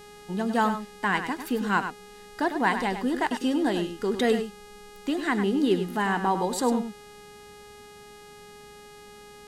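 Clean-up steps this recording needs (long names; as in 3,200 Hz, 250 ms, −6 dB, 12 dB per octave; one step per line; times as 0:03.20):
hum removal 414.1 Hz, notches 30
echo removal 101 ms −9 dB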